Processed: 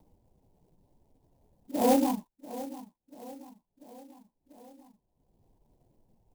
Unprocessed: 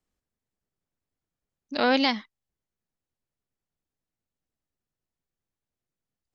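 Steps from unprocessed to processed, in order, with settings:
random phases in long frames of 50 ms
on a send: repeating echo 691 ms, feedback 47%, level −15.5 dB
on the sum: upward compression, threshold −44 dBFS
Butterworth low-pass 1,000 Hz 96 dB per octave
converter with an unsteady clock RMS 0.064 ms

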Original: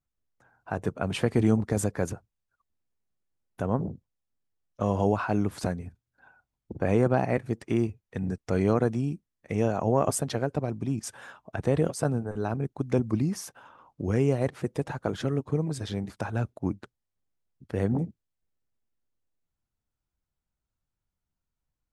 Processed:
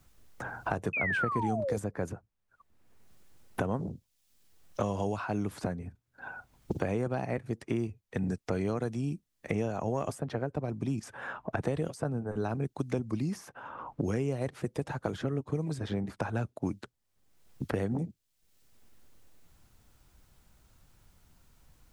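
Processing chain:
sound drawn into the spectrogram fall, 0:00.93–0:01.77, 440–2,600 Hz −24 dBFS
multiband upward and downward compressor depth 100%
level −6 dB

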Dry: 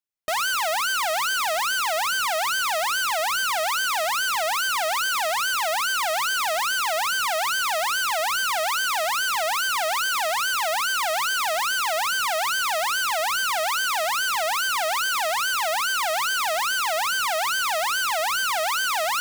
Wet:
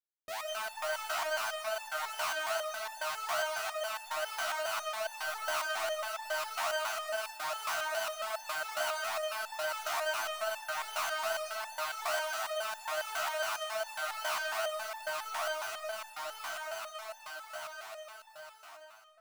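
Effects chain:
fade-out on the ending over 5.01 s
comb and all-pass reverb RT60 1.3 s, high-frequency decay 0.3×, pre-delay 105 ms, DRR −1.5 dB
step-sequenced resonator 7.3 Hz 77–880 Hz
level −4.5 dB

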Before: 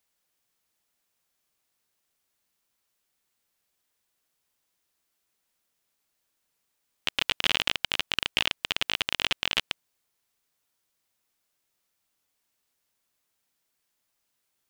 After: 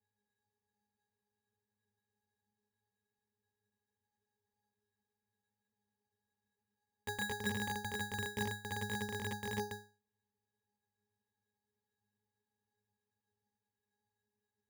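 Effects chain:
resonances in every octave G#, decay 0.35 s
bad sample-rate conversion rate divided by 8×, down filtered, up hold
level +14.5 dB

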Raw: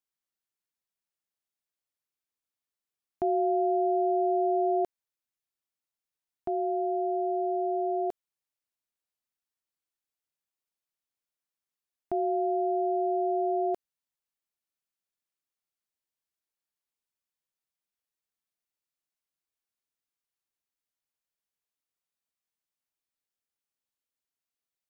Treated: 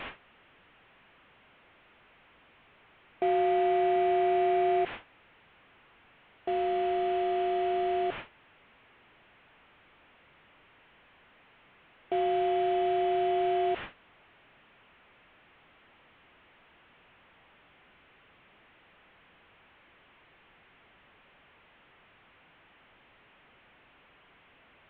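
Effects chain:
linear delta modulator 16 kbit/s, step −32.5 dBFS
noise gate with hold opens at −34 dBFS
every ending faded ahead of time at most 540 dB per second

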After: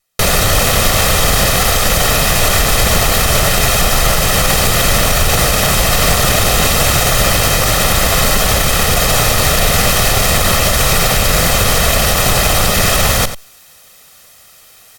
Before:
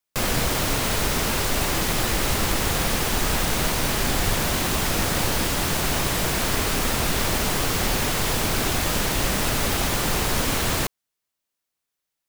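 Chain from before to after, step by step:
lower of the sound and its delayed copy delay 1.3 ms
reversed playback
upward compression, threshold −36 dBFS
reversed playback
speed change −18%
single-tap delay 91 ms −14 dB
boost into a limiter +16 dB
level −1 dB

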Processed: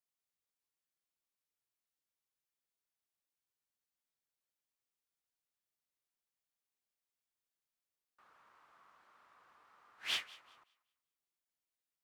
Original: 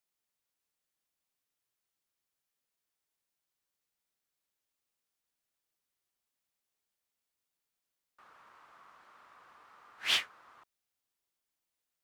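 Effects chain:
feedback echo with a high-pass in the loop 190 ms, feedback 27%, level −20.5 dB
level −7.5 dB

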